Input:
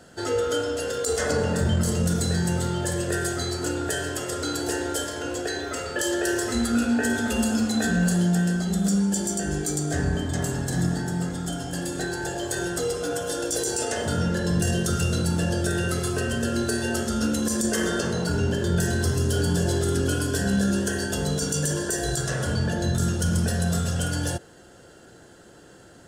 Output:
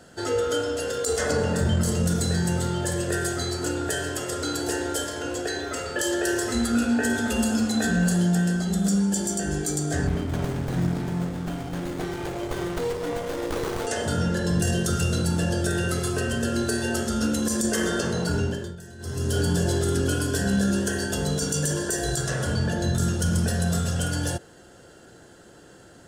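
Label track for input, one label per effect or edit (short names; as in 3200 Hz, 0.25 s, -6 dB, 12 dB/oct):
10.070000	13.870000	running maximum over 17 samples
18.370000	19.370000	dip -19 dB, fades 0.39 s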